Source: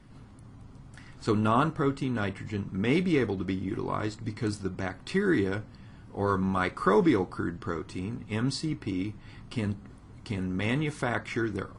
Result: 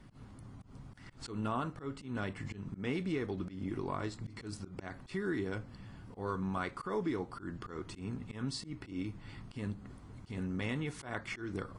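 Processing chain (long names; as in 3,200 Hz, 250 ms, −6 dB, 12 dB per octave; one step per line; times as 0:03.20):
downward compressor 3 to 1, threshold −33 dBFS, peak gain reduction 11.5 dB
volume swells 126 ms
level −1.5 dB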